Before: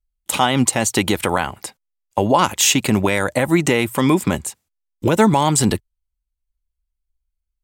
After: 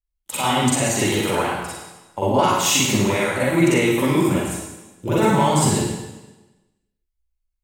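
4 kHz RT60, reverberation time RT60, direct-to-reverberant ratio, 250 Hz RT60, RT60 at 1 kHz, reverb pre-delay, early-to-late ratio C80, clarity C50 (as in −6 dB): 1.1 s, 1.1 s, −9.0 dB, 1.2 s, 1.1 s, 40 ms, 0.5 dB, −2.0 dB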